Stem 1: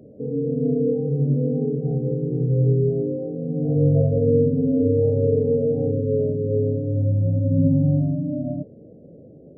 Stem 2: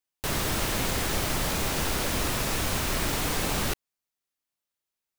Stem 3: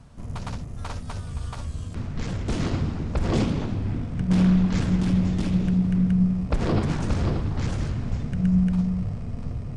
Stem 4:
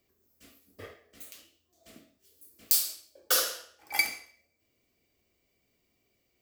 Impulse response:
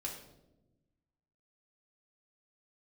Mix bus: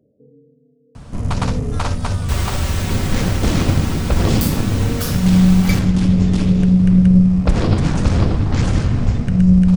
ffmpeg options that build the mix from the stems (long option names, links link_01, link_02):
-filter_complex "[0:a]aeval=exprs='val(0)*pow(10,-32*(0.5-0.5*cos(2*PI*0.62*n/s))/20)':channel_layout=same,volume=-13dB[link_01];[1:a]equalizer=frequency=12000:width=3.5:gain=-15,aecho=1:1:5.3:0.8,adelay=2050,volume=-8dB[link_02];[2:a]acrossover=split=160|3000[link_03][link_04][link_05];[link_04]acompressor=threshold=-28dB:ratio=6[link_06];[link_03][link_06][link_05]amix=inputs=3:normalize=0,adelay=950,volume=3dB,asplit=2[link_07][link_08];[link_08]volume=-10dB[link_09];[3:a]adelay=1700,volume=-7dB[link_10];[4:a]atrim=start_sample=2205[link_11];[link_09][link_11]afir=irnorm=-1:irlink=0[link_12];[link_01][link_02][link_07][link_10][link_12]amix=inputs=5:normalize=0,dynaudnorm=framelen=180:gausssize=5:maxgain=10dB,aeval=exprs='0.891*(cos(1*acos(clip(val(0)/0.891,-1,1)))-cos(1*PI/2))+0.0562*(cos(3*acos(clip(val(0)/0.891,-1,1)))-cos(3*PI/2))':channel_layout=same"